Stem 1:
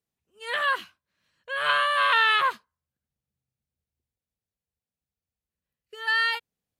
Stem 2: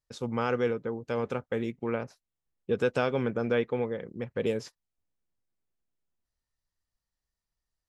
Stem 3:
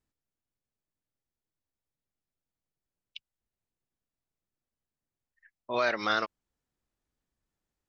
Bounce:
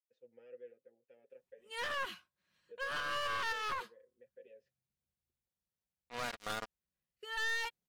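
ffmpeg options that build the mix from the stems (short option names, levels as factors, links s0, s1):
-filter_complex "[0:a]aecho=1:1:5.5:0.35,alimiter=limit=0.133:level=0:latency=1,adelay=1300,volume=0.562[s0];[1:a]asplit=3[s1][s2][s3];[s1]bandpass=f=530:t=q:w=8,volume=1[s4];[s2]bandpass=f=1840:t=q:w=8,volume=0.501[s5];[s3]bandpass=f=2480:t=q:w=8,volume=0.355[s6];[s4][s5][s6]amix=inputs=3:normalize=0,asplit=2[s7][s8];[s8]adelay=6,afreqshift=0.29[s9];[s7][s9]amix=inputs=2:normalize=1,volume=0.133,asplit=2[s10][s11];[2:a]acrusher=bits=3:mix=0:aa=0.5,aecho=1:1:4.2:0.46,adelay=400,volume=0.355[s12];[s11]apad=whole_len=357332[s13];[s0][s13]sidechaincompress=threshold=0.002:ratio=8:attack=35:release=255[s14];[s14][s10][s12]amix=inputs=3:normalize=0,aeval=exprs='clip(val(0),-1,0.0119)':c=same,alimiter=level_in=1.41:limit=0.0631:level=0:latency=1:release=85,volume=0.708"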